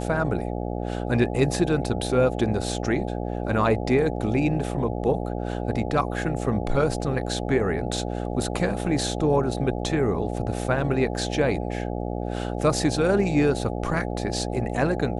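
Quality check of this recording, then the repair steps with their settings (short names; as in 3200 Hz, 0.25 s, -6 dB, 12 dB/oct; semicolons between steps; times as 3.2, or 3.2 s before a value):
buzz 60 Hz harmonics 14 -29 dBFS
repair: de-hum 60 Hz, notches 14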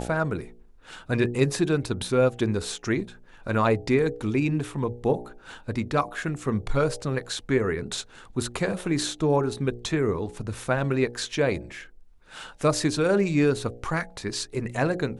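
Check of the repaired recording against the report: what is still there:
none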